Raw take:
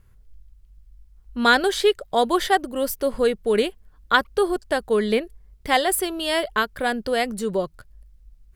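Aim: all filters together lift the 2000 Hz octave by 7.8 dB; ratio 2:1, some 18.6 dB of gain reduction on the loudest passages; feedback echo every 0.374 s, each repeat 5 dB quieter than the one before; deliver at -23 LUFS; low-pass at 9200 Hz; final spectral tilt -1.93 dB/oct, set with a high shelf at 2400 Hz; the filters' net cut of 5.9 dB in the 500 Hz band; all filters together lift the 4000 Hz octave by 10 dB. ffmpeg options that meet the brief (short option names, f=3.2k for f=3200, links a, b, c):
-af "lowpass=9.2k,equalizer=f=500:t=o:g=-8,equalizer=f=2k:t=o:g=8.5,highshelf=f=2.4k:g=3,equalizer=f=4k:t=o:g=7,acompressor=threshold=-41dB:ratio=2,aecho=1:1:374|748|1122|1496|1870|2244|2618:0.562|0.315|0.176|0.0988|0.0553|0.031|0.0173,volume=9dB"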